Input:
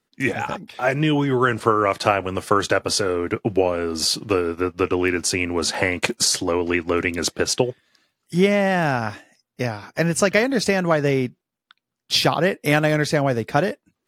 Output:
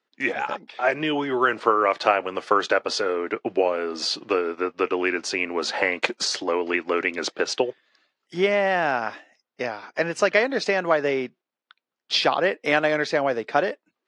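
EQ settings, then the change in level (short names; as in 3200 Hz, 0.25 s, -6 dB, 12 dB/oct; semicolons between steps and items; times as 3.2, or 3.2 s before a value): BPF 390–5500 Hz; air absorption 64 m; 0.0 dB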